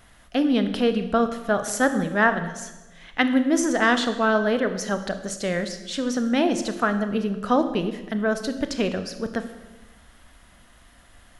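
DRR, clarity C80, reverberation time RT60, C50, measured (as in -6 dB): 8.5 dB, 12.5 dB, 1.1 s, 10.5 dB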